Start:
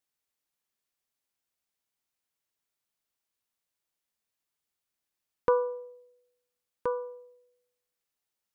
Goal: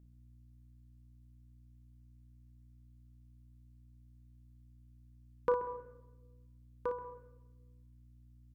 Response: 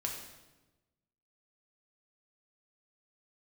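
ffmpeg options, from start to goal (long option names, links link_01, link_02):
-filter_complex "[0:a]aeval=exprs='val(0)+0.00224*(sin(2*PI*60*n/s)+sin(2*PI*2*60*n/s)/2+sin(2*PI*3*60*n/s)/3+sin(2*PI*4*60*n/s)/4+sin(2*PI*5*60*n/s)/5)':channel_layout=same,aecho=1:1:35|58:0.299|0.376,asplit=2[link_01][link_02];[1:a]atrim=start_sample=2205,lowpass=2100,adelay=131[link_03];[link_02][link_03]afir=irnorm=-1:irlink=0,volume=-13dB[link_04];[link_01][link_04]amix=inputs=2:normalize=0,volume=-6dB"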